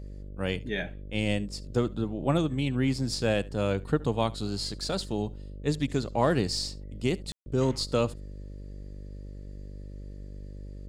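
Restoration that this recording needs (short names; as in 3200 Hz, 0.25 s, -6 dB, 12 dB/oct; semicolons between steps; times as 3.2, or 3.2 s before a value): de-hum 49.3 Hz, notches 12; room tone fill 7.32–7.46; inverse comb 72 ms -22 dB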